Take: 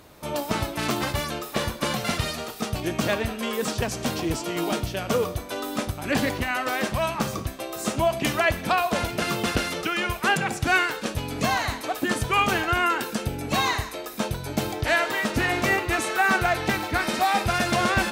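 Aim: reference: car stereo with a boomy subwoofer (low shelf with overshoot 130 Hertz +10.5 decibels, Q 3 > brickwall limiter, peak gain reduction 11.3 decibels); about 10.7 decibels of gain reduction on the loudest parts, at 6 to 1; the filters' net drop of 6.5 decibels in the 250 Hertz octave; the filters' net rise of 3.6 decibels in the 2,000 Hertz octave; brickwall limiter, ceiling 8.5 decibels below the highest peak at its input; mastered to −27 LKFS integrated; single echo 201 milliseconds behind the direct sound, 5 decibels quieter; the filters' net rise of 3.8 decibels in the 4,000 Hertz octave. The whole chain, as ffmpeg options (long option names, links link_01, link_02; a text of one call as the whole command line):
ffmpeg -i in.wav -af "equalizer=frequency=250:width_type=o:gain=-5,equalizer=frequency=2000:width_type=o:gain=4,equalizer=frequency=4000:width_type=o:gain=3.5,acompressor=threshold=-26dB:ratio=6,alimiter=limit=-22.5dB:level=0:latency=1,lowshelf=frequency=130:width_type=q:width=3:gain=10.5,aecho=1:1:201:0.562,volume=3.5dB,alimiter=limit=-17.5dB:level=0:latency=1" out.wav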